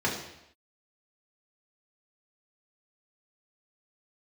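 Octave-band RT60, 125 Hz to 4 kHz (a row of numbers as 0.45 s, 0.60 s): 0.75 s, 0.75 s, 0.80 s, 0.80 s, 0.85 s, 0.80 s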